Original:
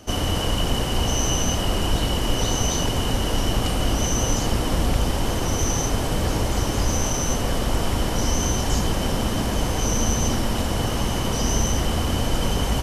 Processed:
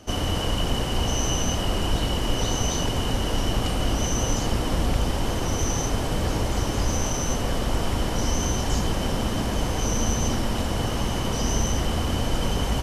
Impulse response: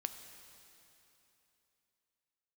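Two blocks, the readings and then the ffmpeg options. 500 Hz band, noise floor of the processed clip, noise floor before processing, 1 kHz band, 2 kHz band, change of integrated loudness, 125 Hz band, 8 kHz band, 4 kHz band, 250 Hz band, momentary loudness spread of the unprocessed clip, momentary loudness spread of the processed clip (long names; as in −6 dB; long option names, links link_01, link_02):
−2.0 dB, −27 dBFS, −25 dBFS, −2.0 dB, −2.0 dB, −2.5 dB, −2.0 dB, −3.5 dB, −2.5 dB, −2.0 dB, 2 LU, 2 LU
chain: -af "highshelf=frequency=9500:gain=-5.5,volume=-2dB"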